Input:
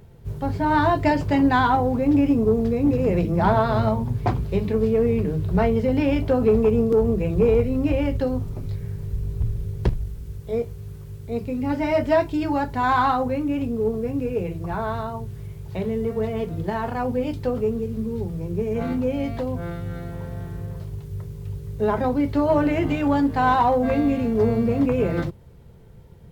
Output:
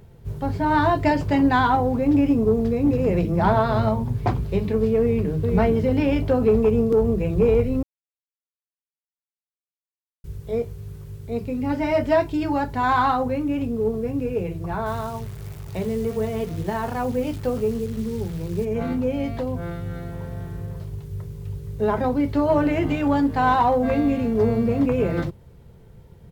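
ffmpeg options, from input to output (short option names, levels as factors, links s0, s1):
-filter_complex "[0:a]asplit=2[s0][s1];[s1]afade=t=in:st=5:d=0.01,afade=t=out:st=5.51:d=0.01,aecho=0:1:430|860|1290|1720:0.595662|0.178699|0.0536096|0.0160829[s2];[s0][s2]amix=inputs=2:normalize=0,asettb=1/sr,asplit=3[s3][s4][s5];[s3]atrim=end=14.864[s6];[s4]atrim=start=14.86:end=18.65,asetpts=PTS-STARTPTS,afade=t=in:d=0.004:c=qsin,afade=t=out:st=3.786:d=0.004:c=qsin,acrusher=bits=8:dc=4:mix=0:aa=0.000001[s7];[s5]atrim=start=18.646[s8];[s6][s7]acrossfade=d=0.004:c1=hsin:c2=qsin[s9];[s9][s8]acrossfade=d=0.004:c1=qsin:c2=hsin,asplit=3[s10][s11][s12];[s10]atrim=end=7.83,asetpts=PTS-STARTPTS,afade=t=out:st=7.826:d=0.004:c=hsin[s13];[s11]atrim=start=7.83:end=10.24,asetpts=PTS-STARTPTS,volume=0[s14];[s12]atrim=start=10.24,asetpts=PTS-STARTPTS,afade=t=in:d=0.004:c=hsin[s15];[s13][s14][s15]concat=n=3:v=0:a=1"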